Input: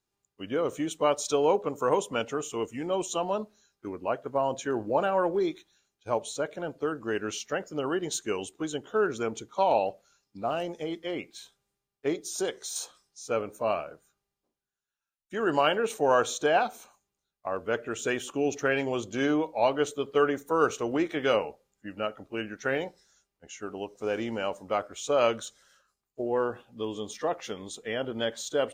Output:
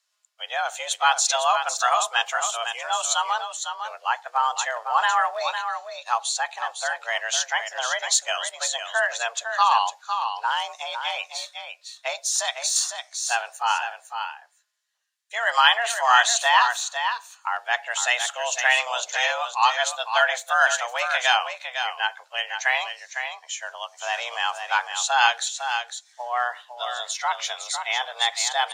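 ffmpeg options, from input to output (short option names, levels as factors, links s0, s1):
-filter_complex "[0:a]highpass=690,lowpass=4900,afreqshift=240,aemphasis=mode=production:type=riaa,asplit=2[s0][s1];[s1]aecho=0:1:505:0.422[s2];[s0][s2]amix=inputs=2:normalize=0,volume=2.51"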